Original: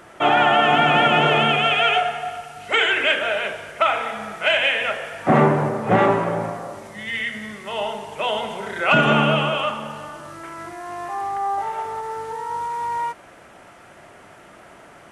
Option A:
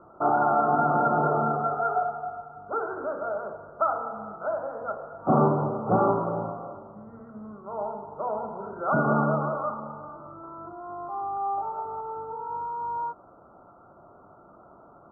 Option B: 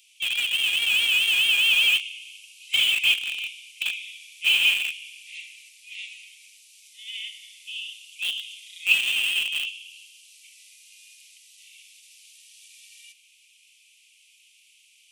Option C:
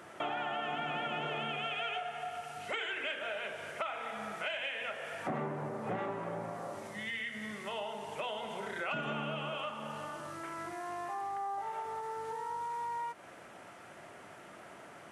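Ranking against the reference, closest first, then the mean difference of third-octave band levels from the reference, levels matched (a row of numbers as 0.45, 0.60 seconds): C, A, B; 5.5, 10.0, 19.0 decibels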